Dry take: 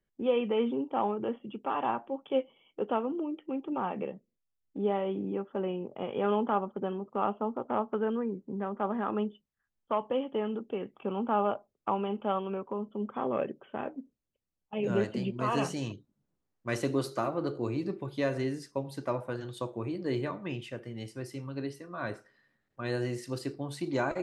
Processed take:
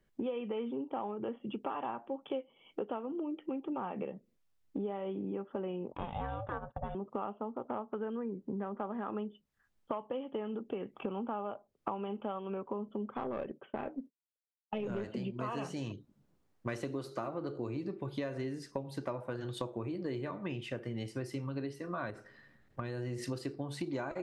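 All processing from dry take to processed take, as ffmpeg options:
-filter_complex "[0:a]asettb=1/sr,asplit=3[a][b][c];[a]atrim=end=5.924[d];[b]atrim=start=5.92:end=6.95,asetpts=PTS-STARTPTS,afade=t=in:d=0.004:c=qsin,afade=t=out:st=1.026:d=0.004:c=qsin,agate=range=-10dB:threshold=-49dB:ratio=16:release=100:detection=peak,aeval=exprs='val(0)*sin(2*PI*340*n/s)':c=same[e];[c]atrim=start=6.946[f];[d][e]acrossfade=d=0.004:c1=hsin:c2=qsin[g];[g][f]acrossfade=d=0.004:c1=qsin:c2=hsin,asettb=1/sr,asplit=3[h][i][j];[h]atrim=end=13.144[k];[i]atrim=start=13.14:end=15.07,asetpts=PTS-STARTPTS,afade=t=in:d=0.004:c=qsin,afade=t=out:st=1.926:d=0.004:c=qsin,highpass=100,agate=range=-33dB:threshold=-52dB:ratio=3:release=100:detection=peak,aeval=exprs='(tanh(14.1*val(0)+0.3)-tanh(0.3))/14.1':c=same[l];[j]atrim=start=15.066[m];[k][l]acrossfade=d=0.004:c1=hsin:c2=qsin[n];[n][m]acrossfade=d=0.004:c1=qsin:c2=hsin,asettb=1/sr,asplit=3[o][p][q];[o]atrim=end=22.104[r];[p]atrim=start=22.1:end=23.25,asetpts=PTS-STARTPTS,afade=t=in:d=0.004:c=qsin,afade=t=out:st=1.146:d=0.004:c=qsin,lowshelf=f=140:g=8.5,acompressor=threshold=-38dB:ratio=6:attack=3.2:release=140:knee=1:detection=peak[s];[q]atrim=start=23.246[t];[r][s]acrossfade=d=0.004:c1=hsin:c2=qsin[u];[u][t]acrossfade=d=0.004:c1=qsin:c2=hsin,highshelf=f=5.2k:g=-6.5,acompressor=threshold=-44dB:ratio=8,volume=9dB"

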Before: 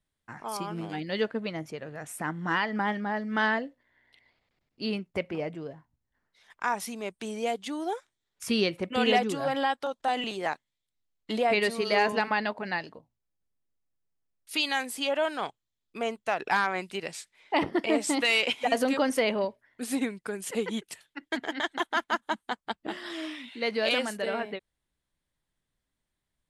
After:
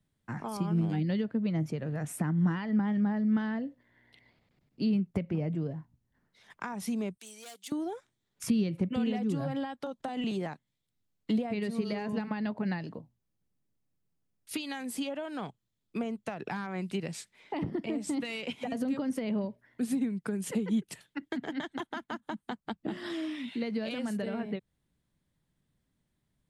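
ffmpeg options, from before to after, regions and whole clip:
-filter_complex "[0:a]asettb=1/sr,asplit=3[a][b][c];[a]atrim=end=7.174[d];[b]atrim=start=7.17:end=7.72,asetpts=PTS-STARTPTS,afade=t=in:d=0.004:c=qsin,afade=t=out:st=0.546:d=0.004:c=qsin,asoftclip=type=hard:threshold=-29.5dB,aderivative[e];[c]atrim=start=7.716[f];[d][e]acrossfade=d=0.004:c1=hsin:c2=qsin[g];[g][f]acrossfade=d=0.004:c1=qsin:c2=hsin,acompressor=threshold=-29dB:ratio=2.5,equalizer=f=160:t=o:w=2.4:g=12.5,acrossover=split=210[h][i];[i]acompressor=threshold=-35dB:ratio=6[j];[h][j]amix=inputs=2:normalize=0"

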